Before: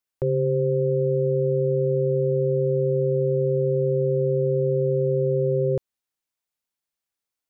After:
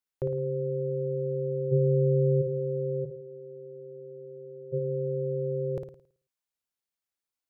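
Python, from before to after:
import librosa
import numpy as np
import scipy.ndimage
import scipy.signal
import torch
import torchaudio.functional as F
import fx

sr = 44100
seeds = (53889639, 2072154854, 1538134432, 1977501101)

p1 = fx.low_shelf(x, sr, hz=430.0, db=10.5, at=(1.71, 2.41), fade=0.02)
p2 = fx.ladder_bandpass(p1, sr, hz=310.0, resonance_pct=40, at=(3.04, 4.72), fade=0.02)
p3 = p2 + fx.room_flutter(p2, sr, wall_m=9.4, rt60_s=0.5, dry=0)
y = p3 * librosa.db_to_amplitude(-5.5)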